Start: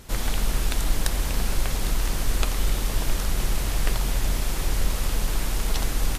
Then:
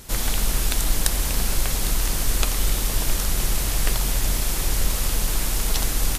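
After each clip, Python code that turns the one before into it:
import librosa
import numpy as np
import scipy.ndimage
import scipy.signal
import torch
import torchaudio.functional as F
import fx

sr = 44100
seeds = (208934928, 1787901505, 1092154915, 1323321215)

y = fx.high_shelf(x, sr, hz=4600.0, db=8.5)
y = y * librosa.db_to_amplitude(1.0)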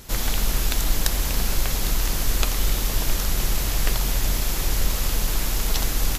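y = fx.peak_eq(x, sr, hz=9100.0, db=-10.0, octaves=0.24)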